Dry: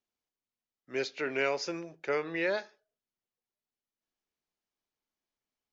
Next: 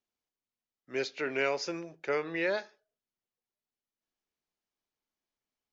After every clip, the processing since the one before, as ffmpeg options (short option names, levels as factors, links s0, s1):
-af anull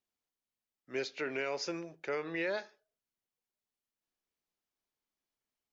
-af "alimiter=level_in=1.06:limit=0.0631:level=0:latency=1:release=112,volume=0.944,volume=0.841"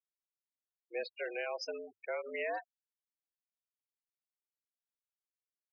-af "afftfilt=real='re*gte(hypot(re,im),0.0224)':imag='im*gte(hypot(re,im),0.0224)':win_size=1024:overlap=0.75,afreqshift=100,volume=0.794"